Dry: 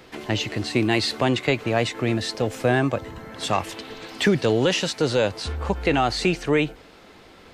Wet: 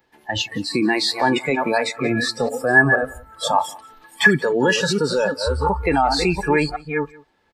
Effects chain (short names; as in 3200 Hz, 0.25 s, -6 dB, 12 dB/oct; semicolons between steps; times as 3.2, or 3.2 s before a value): reverse delay 0.356 s, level -7.5 dB; limiter -14 dBFS, peak gain reduction 7 dB; spectral noise reduction 24 dB; small resonant body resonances 880/1700 Hz, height 18 dB, ringing for 90 ms; on a send: echo 0.181 s -23 dB; on the sum: gain +5 dB